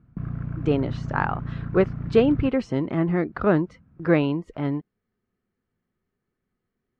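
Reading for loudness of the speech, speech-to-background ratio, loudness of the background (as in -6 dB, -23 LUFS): -24.5 LUFS, 8.0 dB, -32.5 LUFS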